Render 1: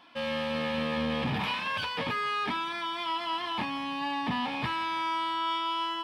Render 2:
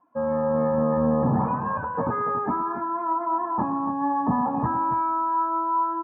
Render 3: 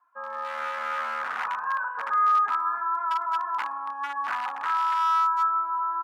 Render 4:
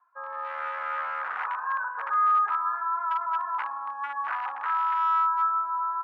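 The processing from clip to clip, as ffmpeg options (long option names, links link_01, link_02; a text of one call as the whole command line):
ffmpeg -i in.wav -filter_complex "[0:a]lowpass=frequency=1200:width=0.5412,lowpass=frequency=1200:width=1.3066,afftdn=noise_reduction=18:noise_floor=-44,asplit=2[link_01][link_02];[link_02]aecho=0:1:111|280:0.237|0.299[link_03];[link_01][link_03]amix=inputs=2:normalize=0,volume=8.5dB" out.wav
ffmpeg -i in.wav -filter_complex "[0:a]asplit=2[link_01][link_02];[link_02]adelay=42,volume=-8dB[link_03];[link_01][link_03]amix=inputs=2:normalize=0,aeval=exprs='0.126*(abs(mod(val(0)/0.126+3,4)-2)-1)':channel_layout=same,highpass=frequency=1400:width_type=q:width=3.4,volume=-3dB" out.wav
ffmpeg -i in.wav -filter_complex "[0:a]lowshelf=frequency=290:gain=-11,areverse,acompressor=mode=upward:threshold=-41dB:ratio=2.5,areverse,acrossover=split=290 2700:gain=0.158 1 0.0891[link_01][link_02][link_03];[link_01][link_02][link_03]amix=inputs=3:normalize=0" out.wav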